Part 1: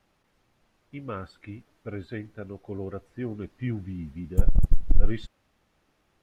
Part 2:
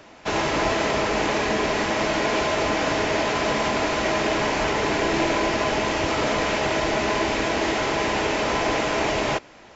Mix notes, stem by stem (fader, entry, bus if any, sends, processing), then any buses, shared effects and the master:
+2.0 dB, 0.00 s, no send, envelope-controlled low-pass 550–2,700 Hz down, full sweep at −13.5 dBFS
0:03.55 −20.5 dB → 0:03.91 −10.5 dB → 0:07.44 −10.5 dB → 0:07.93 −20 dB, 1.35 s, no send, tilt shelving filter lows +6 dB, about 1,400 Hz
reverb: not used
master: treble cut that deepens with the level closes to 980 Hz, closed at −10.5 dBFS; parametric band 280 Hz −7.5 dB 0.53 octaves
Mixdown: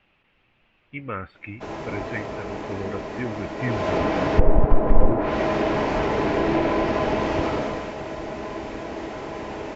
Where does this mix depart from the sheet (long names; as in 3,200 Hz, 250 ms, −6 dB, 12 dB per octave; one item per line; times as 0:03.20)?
stem 2 −20.5 dB → −13.0 dB
master: missing parametric band 280 Hz −7.5 dB 0.53 octaves